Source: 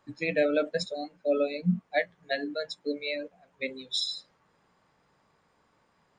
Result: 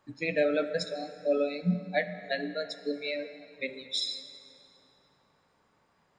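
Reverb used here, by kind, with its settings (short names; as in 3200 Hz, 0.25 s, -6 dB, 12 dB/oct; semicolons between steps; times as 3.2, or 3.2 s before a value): plate-style reverb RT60 2.9 s, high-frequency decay 0.7×, DRR 10 dB; gain -1.5 dB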